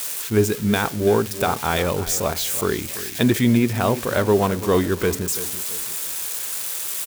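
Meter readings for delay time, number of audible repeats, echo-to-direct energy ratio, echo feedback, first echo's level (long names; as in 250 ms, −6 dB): 336 ms, 3, −13.5 dB, 36%, −14.0 dB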